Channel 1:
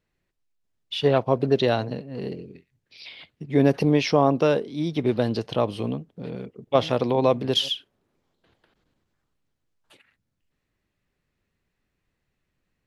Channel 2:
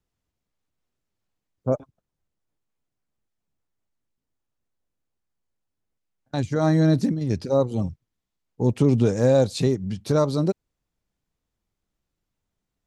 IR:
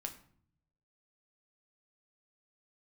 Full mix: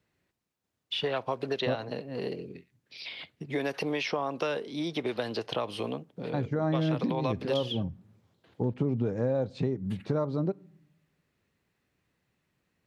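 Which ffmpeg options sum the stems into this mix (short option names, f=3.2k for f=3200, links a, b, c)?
-filter_complex "[0:a]acrossover=split=380|1100|3500[a][b][c][d];[a]acompressor=threshold=-42dB:ratio=4[e];[b]acompressor=threshold=-31dB:ratio=4[f];[c]acompressor=threshold=-32dB:ratio=4[g];[d]acompressor=threshold=-46dB:ratio=4[h];[e][f][g][h]amix=inputs=4:normalize=0,volume=1.5dB,asplit=2[i][j];[j]volume=-20dB[k];[1:a]lowpass=2.1k,volume=-2.5dB,asplit=2[l][m];[m]volume=-15dB[n];[2:a]atrim=start_sample=2205[o];[k][n]amix=inputs=2:normalize=0[p];[p][o]afir=irnorm=-1:irlink=0[q];[i][l][q]amix=inputs=3:normalize=0,highpass=85,acompressor=threshold=-27dB:ratio=3"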